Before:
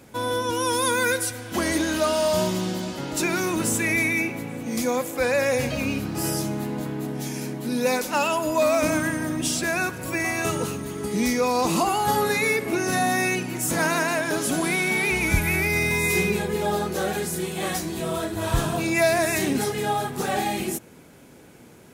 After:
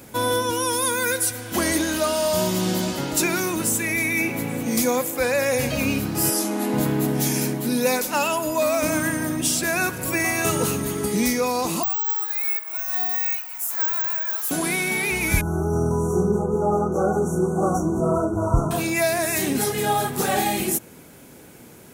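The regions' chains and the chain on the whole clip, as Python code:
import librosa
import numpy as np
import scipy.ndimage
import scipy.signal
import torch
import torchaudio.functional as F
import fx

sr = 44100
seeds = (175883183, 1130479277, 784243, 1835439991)

y = fx.chain(x, sr, fx.brickwall_bandpass(low_hz=190.0, high_hz=13000.0),
    fx.transformer_sat(knee_hz=560.0), at=(6.3, 6.74))
y = fx.chain(y, sr, fx.ladder_highpass(hz=770.0, resonance_pct=35),
    fx.resample_bad(factor=2, down='none', up='zero_stuff'), at=(11.83, 14.51))
y = fx.chain(y, sr, fx.brickwall_bandstop(low_hz=1500.0, high_hz=5600.0),
    fx.spacing_loss(db_at_10k=22), at=(15.41, 18.71))
y = fx.high_shelf(y, sr, hz=10000.0, db=11.5)
y = fx.rider(y, sr, range_db=10, speed_s=0.5)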